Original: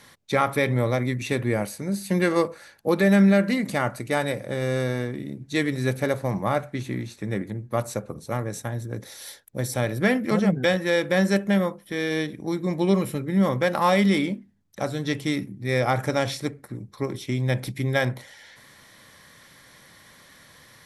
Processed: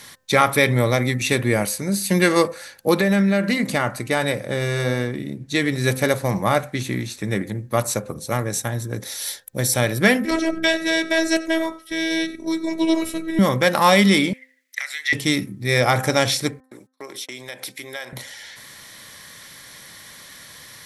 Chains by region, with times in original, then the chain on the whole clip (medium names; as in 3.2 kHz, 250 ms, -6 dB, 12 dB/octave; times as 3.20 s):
2.99–5.84 s: treble shelf 4.3 kHz -6.5 dB + compression 4:1, threshold -19 dBFS
10.25–13.39 s: low-pass 9.1 kHz + robot voice 325 Hz + delay 93 ms -20 dB
14.33–15.13 s: compression 10:1, threshold -30 dBFS + resonant high-pass 2 kHz, resonance Q 12
16.60–18.13 s: gate -40 dBFS, range -37 dB + high-pass 480 Hz + compression 3:1, threshold -39 dBFS
whole clip: treble shelf 2.2 kHz +9 dB; de-hum 259.4 Hz, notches 7; trim +4 dB